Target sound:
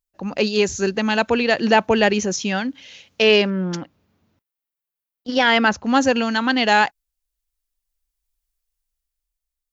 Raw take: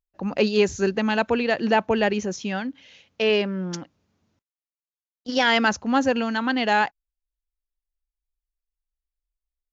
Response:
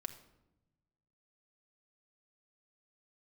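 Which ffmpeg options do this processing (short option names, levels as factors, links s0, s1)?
-filter_complex "[0:a]highshelf=f=3900:g=9,dynaudnorm=f=260:g=9:m=2.37,asettb=1/sr,asplit=3[s0][s1][s2];[s0]atrim=end=3.504[s3];[s1]atrim=start=3.5:end=5.84,asetpts=PTS-STARTPTS,afade=t=in:d=0.004:c=qsin,afade=t=out:st=2.336:d=0.004:c=qsin,equalizer=f=6600:w=0.84:g=-12.5[s4];[s2]atrim=start=5.836[s5];[s3][s4]acrossfade=d=0.004:c1=hsin:c2=qsin[s6];[s6][s5]acrossfade=d=0.004:c1=qsin:c2=hsin"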